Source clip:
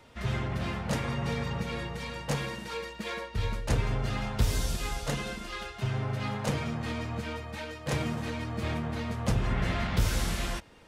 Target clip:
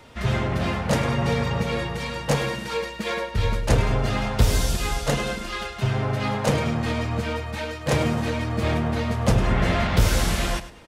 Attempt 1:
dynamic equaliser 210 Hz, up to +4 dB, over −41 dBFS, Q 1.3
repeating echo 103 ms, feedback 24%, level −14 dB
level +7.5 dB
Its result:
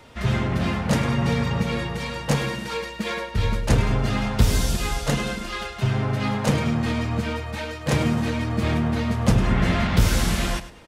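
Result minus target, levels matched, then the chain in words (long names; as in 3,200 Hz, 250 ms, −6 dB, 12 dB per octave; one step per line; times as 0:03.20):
500 Hz band −3.0 dB
dynamic equaliser 570 Hz, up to +4 dB, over −41 dBFS, Q 1.3
repeating echo 103 ms, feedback 24%, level −14 dB
level +7.5 dB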